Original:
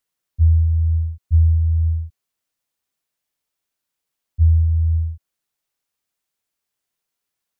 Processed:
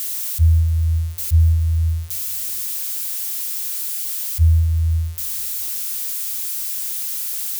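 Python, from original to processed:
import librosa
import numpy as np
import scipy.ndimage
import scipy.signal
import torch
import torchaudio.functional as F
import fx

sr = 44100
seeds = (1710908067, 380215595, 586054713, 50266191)

p1 = x + 0.5 * 10.0 ** (-17.5 / 20.0) * np.diff(np.sign(x), prepend=np.sign(x[:1]))
p2 = fx.low_shelf(p1, sr, hz=120.0, db=6.0)
p3 = p2 + fx.echo_feedback(p2, sr, ms=216, feedback_pct=46, wet_db=-22.0, dry=0)
y = F.gain(torch.from_numpy(p3), -4.0).numpy()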